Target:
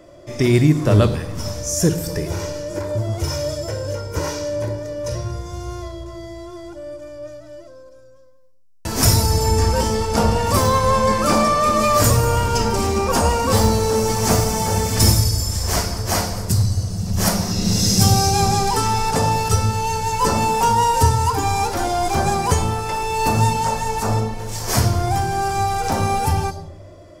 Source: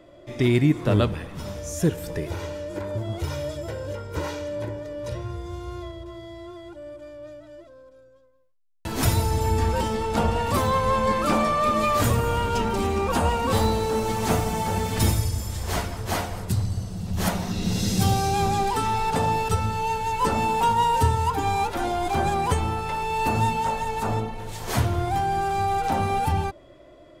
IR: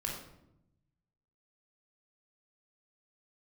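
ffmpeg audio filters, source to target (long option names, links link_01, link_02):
-filter_complex "[0:a]asplit=2[link_01][link_02];[link_02]highshelf=frequency=3600:width_type=q:width=3:gain=12.5[link_03];[1:a]atrim=start_sample=2205[link_04];[link_03][link_04]afir=irnorm=-1:irlink=0,volume=-10dB[link_05];[link_01][link_05]amix=inputs=2:normalize=0,volume=3dB"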